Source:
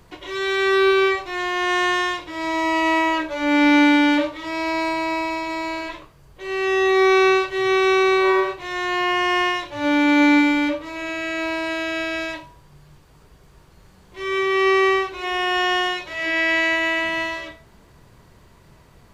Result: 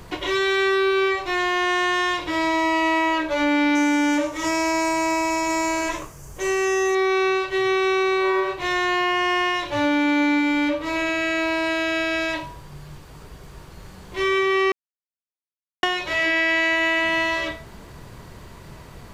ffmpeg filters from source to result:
-filter_complex "[0:a]asettb=1/sr,asplit=3[a][b][c];[a]atrim=end=3.754[d];[b]atrim=start=3.75:end=6.95,asetpts=PTS-STARTPTS,afade=t=in:d=0.004:c=qsin,afade=t=out:st=3.196:d=0.004:c=qsin,highshelf=f=5.1k:t=q:w=3:g=7.5[e];[c]atrim=start=6.946[f];[d][e]acrossfade=d=0.004:c1=hsin:c2=qsin[g];[g][f]acrossfade=d=0.004:c1=qsin:c2=hsin,asplit=3[h][i][j];[h]atrim=end=14.72,asetpts=PTS-STARTPTS,afade=t=out:st=14.716:d=0.004:c=hsin[k];[i]atrim=start=14.72:end=15.83,asetpts=PTS-STARTPTS,volume=0[l];[j]atrim=start=15.83,asetpts=PTS-STARTPTS,afade=t=in:d=0.004:c=hsin[m];[k][l][m]concat=n=3:v=0:a=1,acompressor=threshold=-29dB:ratio=4,volume=9dB"

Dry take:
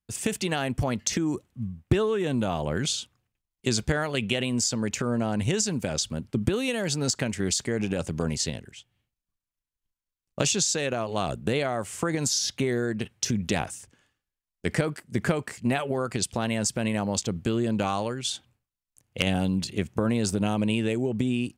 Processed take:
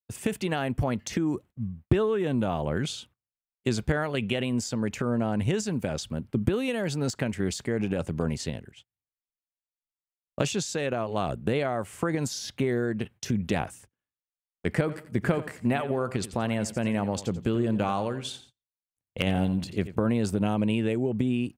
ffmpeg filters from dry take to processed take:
-filter_complex "[0:a]asplit=3[a][b][c];[a]afade=t=out:st=14.88:d=0.02[d];[b]aecho=1:1:87|174|261:0.2|0.0658|0.0217,afade=t=in:st=14.88:d=0.02,afade=t=out:st=19.94:d=0.02[e];[c]afade=t=in:st=19.94:d=0.02[f];[d][e][f]amix=inputs=3:normalize=0,agate=range=-25dB:threshold=-46dB:ratio=16:detection=peak,equalizer=f=6.4k:t=o:w=1.8:g=-10.5"

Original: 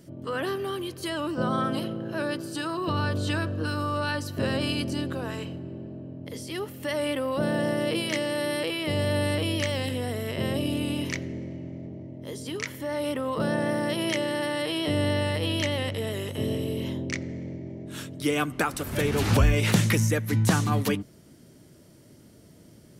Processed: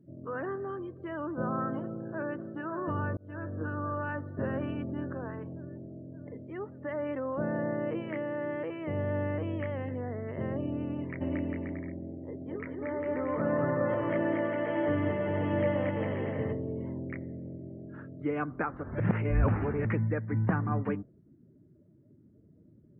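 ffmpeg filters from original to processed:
-filter_complex "[0:a]asplit=2[a][b];[b]afade=t=in:st=1.81:d=0.01,afade=t=out:st=2.46:d=0.01,aecho=0:1:570|1140|1710|2280|2850|3420|3990|4560|5130|5700|6270|6840:0.398107|0.29858|0.223935|0.167951|0.125964|0.0944727|0.0708545|0.0531409|0.0398557|0.0298918|0.0224188|0.0168141[c];[a][c]amix=inputs=2:normalize=0,asplit=3[d][e][f];[d]afade=t=out:st=11.2:d=0.02[g];[e]aecho=1:1:230|402.5|531.9|628.9|701.7|756.3:0.794|0.631|0.501|0.398|0.316|0.251,afade=t=in:st=11.2:d=0.02,afade=t=out:st=16.52:d=0.02[h];[f]afade=t=in:st=16.52:d=0.02[i];[g][h][i]amix=inputs=3:normalize=0,asplit=4[j][k][l][m];[j]atrim=end=3.17,asetpts=PTS-STARTPTS,afade=t=out:st=3.166:d=0.004:c=hsin[n];[k]atrim=start=3.17:end=19.002,asetpts=PTS-STARTPTS,afade=t=in:d=0.44[o];[l]atrim=start=18.998:end=19.852,asetpts=PTS-STARTPTS,areverse[p];[m]atrim=start=19.848[q];[n][o]concat=n=2:v=0:a=1[r];[r][p]acrossfade=d=0.004:c1=hsin:c2=hsin[s];[s][q]acrossfade=d=0.004:c1=hsin:c2=hsin,lowpass=f=1.8k:w=0.5412,lowpass=f=1.8k:w=1.3066,afftdn=nr=18:nf=-48,volume=-5.5dB"

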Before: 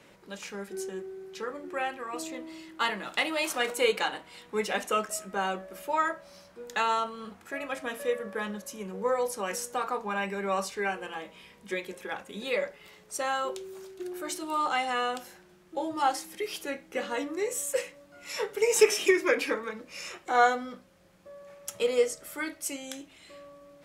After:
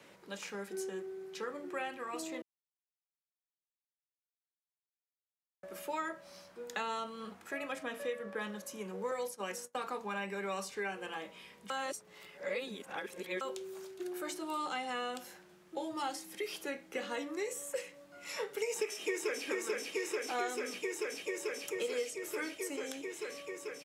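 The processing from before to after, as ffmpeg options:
-filter_complex "[0:a]asettb=1/sr,asplit=3[a][b][c];[a]atrim=end=7.834[d];[b]atrim=start=7.83:end=8.41,asetpts=PTS-STARTPTS,afade=t=in:d=0.004:c=qsin,afade=t=out:st=0.576:d=0.004:c=qsin,highshelf=f=6.1k:g=-9[e];[c]atrim=start=8.406[f];[d][e]acrossfade=d=0.004:c1=hsin:c2=qsin[g];[g][f]acrossfade=d=0.004:c1=qsin:c2=hsin,asettb=1/sr,asplit=3[h][i][j];[h]atrim=end=9.114[k];[i]atrim=start=9.11:end=9.75,asetpts=PTS-STARTPTS,afade=t=in:d=0.004:c=qsin,afade=t=out:st=0.636:d=0.004:c=qsin,agate=range=-33dB:threshold=-32dB:ratio=3:release=100:detection=peak[l];[j]atrim=start=9.746[m];[k][l]acrossfade=d=0.004:c1=hsin:c2=qsin[n];[n][m]acrossfade=d=0.004:c1=qsin:c2=hsin,asplit=2[o][p];[p]afade=t=in:st=18.63:d=0.01,afade=t=out:st=19.46:d=0.01,aecho=0:1:440|880|1320|1760|2200|2640|3080|3520|3960|4400|4840|5280:0.668344|0.534675|0.42774|0.342192|0.273754|0.219003|0.175202|0.140162|0.11213|0.0897036|0.0717629|0.0574103[q];[o][q]amix=inputs=2:normalize=0,asplit=5[r][s][t][u][v];[r]atrim=end=2.42,asetpts=PTS-STARTPTS,afade=t=out:st=2.416:d=0.004:c=hsin[w];[s]atrim=start=2.42:end=5.63,asetpts=PTS-STARTPTS,volume=0[x];[t]atrim=start=5.63:end=11.702,asetpts=PTS-STARTPTS,afade=t=in:d=0.004:c=hsin[y];[u]atrim=start=11.698:end=13.412,asetpts=PTS-STARTPTS,areverse[z];[v]atrim=start=13.408[aa];[w][x][y]concat=n=3:v=0:a=1[ab];[ab][z]acrossfade=d=0.004:c1=hsin:c2=hsin[ac];[ac][aa]acrossfade=d=0.004:c1=hsin:c2=hsin,acrossover=split=420|1900[ad][ae][af];[ad]acompressor=threshold=-39dB:ratio=4[ag];[ae]acompressor=threshold=-39dB:ratio=4[ah];[af]acompressor=threshold=-42dB:ratio=4[ai];[ag][ah][ai]amix=inputs=3:normalize=0,highpass=f=170:p=1,volume=-1.5dB"

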